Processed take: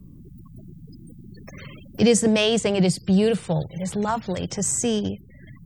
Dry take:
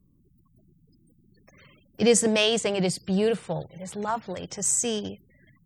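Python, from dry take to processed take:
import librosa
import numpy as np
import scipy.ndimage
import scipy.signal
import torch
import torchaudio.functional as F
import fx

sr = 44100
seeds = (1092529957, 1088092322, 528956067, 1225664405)

y = fx.low_shelf(x, sr, hz=220.0, db=11.5)
y = fx.band_squash(y, sr, depth_pct=40)
y = F.gain(torch.from_numpy(y), 1.5).numpy()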